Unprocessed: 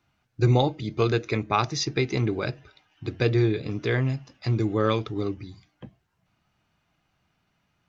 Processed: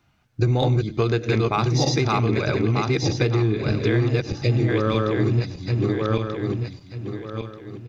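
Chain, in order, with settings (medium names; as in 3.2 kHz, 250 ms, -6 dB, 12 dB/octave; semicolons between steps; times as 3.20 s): backward echo that repeats 618 ms, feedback 50%, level 0 dB; in parallel at -8 dB: hard clipper -15 dBFS, distortion -16 dB; on the sum: bass shelf 220 Hz +3.5 dB; on a send: delay 96 ms -20 dB; on the sum: compression 4:1, threshold -20 dBFS, peak gain reduction 9 dB; spectral replace 4.37–4.66 s, 730–1800 Hz before; trim +2.5 dB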